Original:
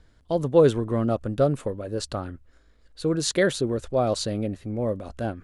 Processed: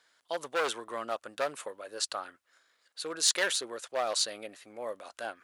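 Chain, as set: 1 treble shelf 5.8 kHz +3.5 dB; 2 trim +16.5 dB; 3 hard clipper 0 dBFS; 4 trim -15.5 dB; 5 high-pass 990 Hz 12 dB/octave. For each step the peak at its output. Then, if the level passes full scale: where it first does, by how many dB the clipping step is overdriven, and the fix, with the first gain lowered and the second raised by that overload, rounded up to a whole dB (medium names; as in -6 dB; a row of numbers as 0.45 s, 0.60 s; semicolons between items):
-7.0 dBFS, +9.5 dBFS, 0.0 dBFS, -15.5 dBFS, -13.5 dBFS; step 2, 9.5 dB; step 2 +6.5 dB, step 4 -5.5 dB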